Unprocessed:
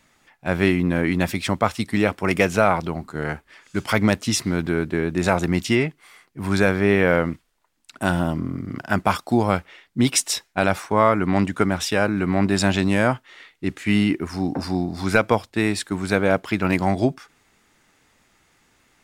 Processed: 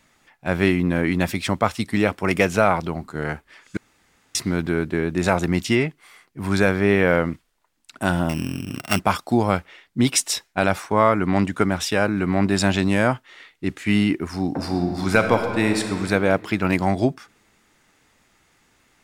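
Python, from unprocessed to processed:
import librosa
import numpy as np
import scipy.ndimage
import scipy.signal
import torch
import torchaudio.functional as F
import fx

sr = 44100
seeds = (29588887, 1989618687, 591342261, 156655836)

y = fx.sample_sort(x, sr, block=16, at=(8.29, 9.0))
y = fx.reverb_throw(y, sr, start_s=14.49, length_s=1.43, rt60_s=2.2, drr_db=4.5)
y = fx.edit(y, sr, fx.room_tone_fill(start_s=3.77, length_s=0.58), tone=tone)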